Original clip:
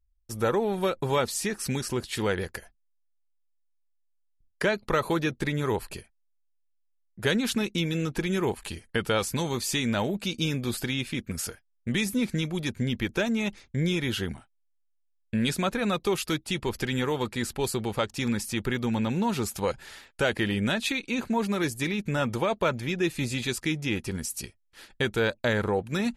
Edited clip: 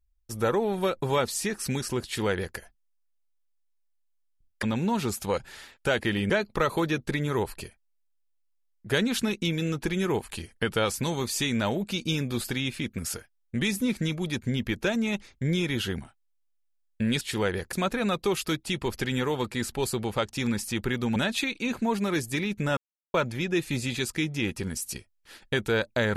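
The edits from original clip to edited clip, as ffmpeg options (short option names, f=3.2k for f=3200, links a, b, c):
-filter_complex "[0:a]asplit=8[a][b][c][d][e][f][g][h];[a]atrim=end=4.632[i];[b]atrim=start=18.968:end=20.642[j];[c]atrim=start=4.628:end=15.542[k];[d]atrim=start=2.048:end=2.572[l];[e]atrim=start=15.538:end=18.972[m];[f]atrim=start=20.638:end=22.25,asetpts=PTS-STARTPTS,afade=t=out:st=1.608:d=0.004:c=hsin[n];[g]atrim=start=22.25:end=22.62,asetpts=PTS-STARTPTS,volume=0[o];[h]atrim=start=22.62,asetpts=PTS-STARTPTS,afade=t=in:d=0.004:c=hsin[p];[i][j]acrossfade=d=0.004:c1=hsin:c2=hsin[q];[q][k]acrossfade=d=0.004:c1=hsin:c2=hsin[r];[r][l]acrossfade=d=0.004:c1=hsin:c2=hsin[s];[s][m]acrossfade=d=0.004:c1=hsin:c2=hsin[t];[n][o][p]concat=n=3:v=0:a=1[u];[t][u]acrossfade=d=0.004:c1=hsin:c2=hsin"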